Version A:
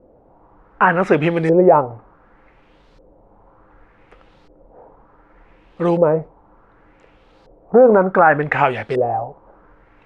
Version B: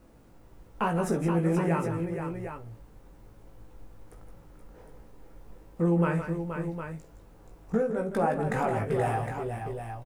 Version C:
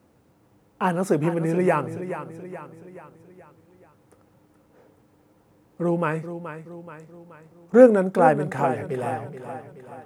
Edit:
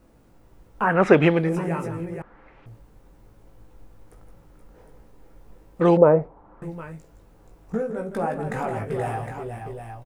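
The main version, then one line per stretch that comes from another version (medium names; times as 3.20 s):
B
0.91–1.42 s: from A, crossfade 0.24 s
2.22–2.66 s: from A
5.81–6.62 s: from A
not used: C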